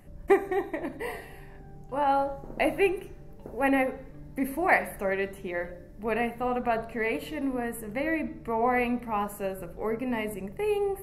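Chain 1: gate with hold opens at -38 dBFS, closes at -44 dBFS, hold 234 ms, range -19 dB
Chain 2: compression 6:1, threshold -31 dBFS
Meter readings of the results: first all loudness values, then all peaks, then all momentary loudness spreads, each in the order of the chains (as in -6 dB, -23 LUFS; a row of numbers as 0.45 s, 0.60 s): -29.0 LUFS, -36.5 LUFS; -9.0 dBFS, -17.0 dBFS; 12 LU, 8 LU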